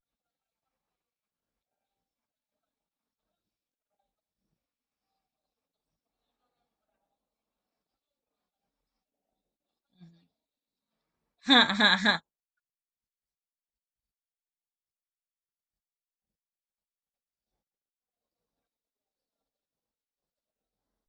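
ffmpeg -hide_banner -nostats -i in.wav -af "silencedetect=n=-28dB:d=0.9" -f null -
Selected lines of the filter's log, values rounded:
silence_start: 0.00
silence_end: 11.48 | silence_duration: 11.48
silence_start: 12.16
silence_end: 21.08 | silence_duration: 8.92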